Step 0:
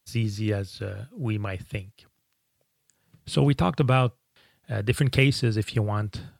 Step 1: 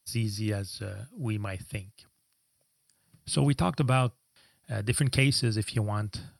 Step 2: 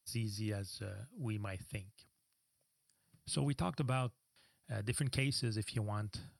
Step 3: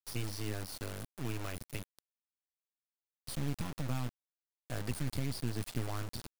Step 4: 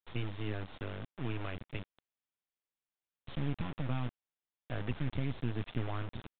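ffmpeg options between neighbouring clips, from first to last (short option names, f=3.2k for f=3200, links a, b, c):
-af "superequalizer=7b=0.562:14b=2.24:15b=0.562:16b=3.98,volume=-3.5dB"
-af "acompressor=threshold=-29dB:ratio=1.5,volume=-7.5dB"
-filter_complex "[0:a]acrossover=split=180[a][b];[b]acompressor=threshold=-44dB:ratio=8[c];[a][c]amix=inputs=2:normalize=0,acrusher=bits=5:dc=4:mix=0:aa=0.000001,volume=6dB"
-af "aresample=8000,aresample=44100,volume=1dB"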